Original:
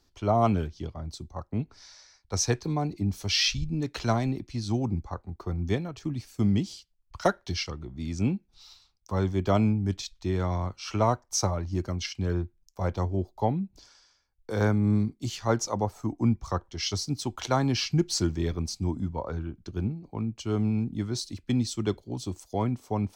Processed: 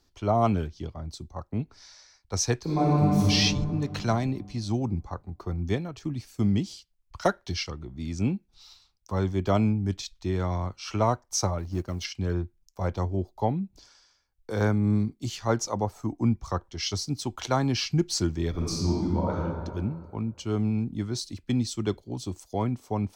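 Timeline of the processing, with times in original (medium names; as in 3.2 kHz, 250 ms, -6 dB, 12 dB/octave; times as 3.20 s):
2.62–3.25 s: reverb throw, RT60 2.8 s, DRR -7 dB
11.58–12.05 s: companding laws mixed up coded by A
18.50–19.38 s: reverb throw, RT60 1.9 s, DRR -4 dB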